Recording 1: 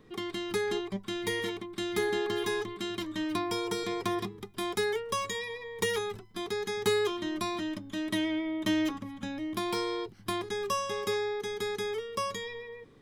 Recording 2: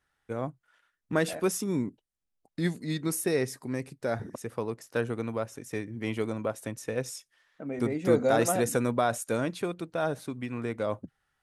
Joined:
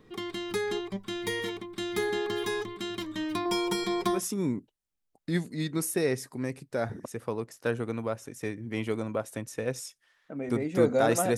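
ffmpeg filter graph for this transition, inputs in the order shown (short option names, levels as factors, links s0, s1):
-filter_complex "[0:a]asettb=1/sr,asplit=3[s0][s1][s2];[s0]atrim=end=3.454[s3];[s1]atrim=start=3.45:end=4.25,asetpts=PTS-STARTPTS,afade=t=in:d=0.004:c=qsin,afade=t=out:st=0.796:d=0.004:c=qsin,aecho=1:1:5.5:0.93,atrim=end_sample=35280[s4];[s2]atrim=start=4.246[s5];[s3][s4]acrossfade=d=0.004:c1=hsin:c2=qsin[s6];[s6][s5]acrossfade=d=0.004:c1=qsin:c2=hsin,apad=whole_dur=11.37,atrim=end=11.37,atrim=end=4.25,asetpts=PTS-STARTPTS[s7];[1:a]atrim=start=1.39:end=8.67,asetpts=PTS-STARTPTS[s8];[s7][s8]acrossfade=d=0.16:c1=tri:c2=tri"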